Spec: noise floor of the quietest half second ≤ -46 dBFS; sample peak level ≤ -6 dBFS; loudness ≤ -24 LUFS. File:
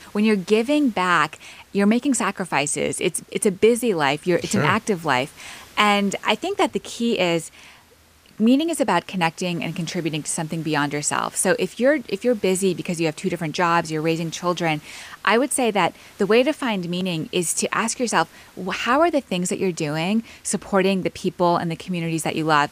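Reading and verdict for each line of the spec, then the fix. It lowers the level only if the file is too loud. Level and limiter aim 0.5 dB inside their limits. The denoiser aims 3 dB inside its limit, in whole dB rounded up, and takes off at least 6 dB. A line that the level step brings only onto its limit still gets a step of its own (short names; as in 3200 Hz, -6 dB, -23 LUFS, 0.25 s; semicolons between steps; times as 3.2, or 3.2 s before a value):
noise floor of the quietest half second -53 dBFS: OK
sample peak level -3.5 dBFS: fail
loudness -21.5 LUFS: fail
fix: gain -3 dB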